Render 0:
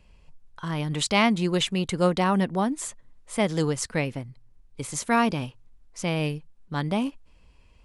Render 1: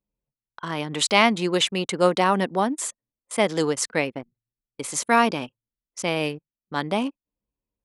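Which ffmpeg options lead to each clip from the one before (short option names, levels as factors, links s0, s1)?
-af "highpass=280,anlmdn=0.251,volume=1.68"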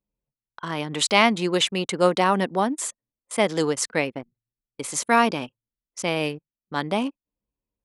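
-af anull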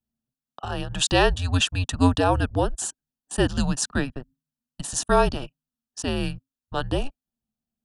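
-af "asuperstop=centerf=2400:order=4:qfactor=3.4,afreqshift=-270"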